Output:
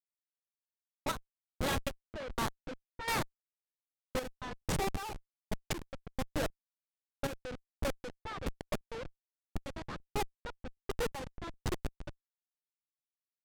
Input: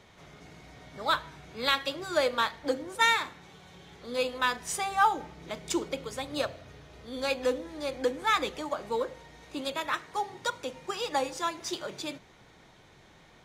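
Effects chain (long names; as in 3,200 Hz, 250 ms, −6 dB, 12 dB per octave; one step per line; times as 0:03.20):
comparator with hysteresis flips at −28 dBFS
square-wave tremolo 1.3 Hz, depth 65%, duty 45%
low-pass that shuts in the quiet parts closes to 510 Hz, open at −36 dBFS
level +1 dB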